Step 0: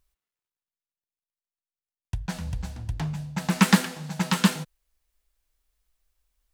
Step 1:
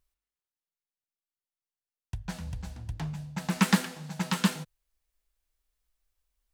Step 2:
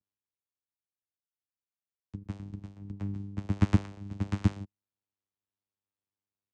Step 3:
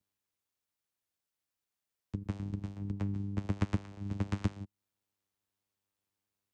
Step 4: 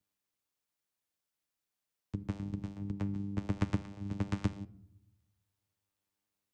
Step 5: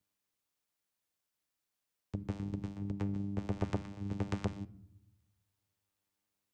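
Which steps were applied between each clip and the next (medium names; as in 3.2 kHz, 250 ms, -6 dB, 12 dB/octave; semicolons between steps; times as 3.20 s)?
de-hum 49.65 Hz, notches 2; trim -5 dB
vocoder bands 4, saw 99.7 Hz
compression 3:1, threshold -38 dBFS, peak gain reduction 16.5 dB; trim +6 dB
simulated room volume 2900 m³, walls furnished, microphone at 0.44 m
transformer saturation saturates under 420 Hz; trim +1 dB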